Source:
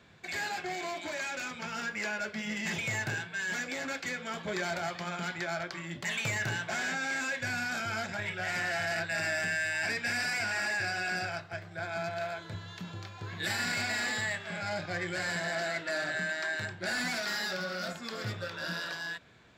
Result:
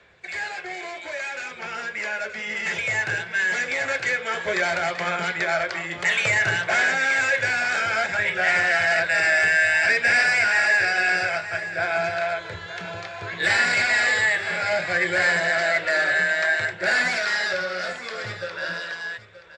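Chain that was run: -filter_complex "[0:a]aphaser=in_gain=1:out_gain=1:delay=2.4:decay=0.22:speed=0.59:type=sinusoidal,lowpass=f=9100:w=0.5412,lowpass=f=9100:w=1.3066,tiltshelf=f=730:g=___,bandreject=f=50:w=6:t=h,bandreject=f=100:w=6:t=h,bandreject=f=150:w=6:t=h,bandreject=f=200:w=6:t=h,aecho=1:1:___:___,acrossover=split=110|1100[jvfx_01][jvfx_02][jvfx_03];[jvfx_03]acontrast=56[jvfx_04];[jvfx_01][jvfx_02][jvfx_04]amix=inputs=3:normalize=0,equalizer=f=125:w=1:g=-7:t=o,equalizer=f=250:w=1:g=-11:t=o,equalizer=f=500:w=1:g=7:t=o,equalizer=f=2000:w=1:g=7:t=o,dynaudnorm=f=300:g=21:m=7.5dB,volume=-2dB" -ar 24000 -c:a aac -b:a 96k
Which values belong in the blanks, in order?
5.5, 926, 0.224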